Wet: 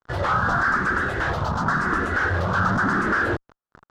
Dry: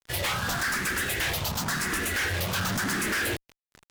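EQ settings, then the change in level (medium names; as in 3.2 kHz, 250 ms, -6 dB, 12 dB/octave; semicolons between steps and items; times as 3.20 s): distance through air 140 m; resonant high shelf 1.8 kHz -9 dB, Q 3; +7.0 dB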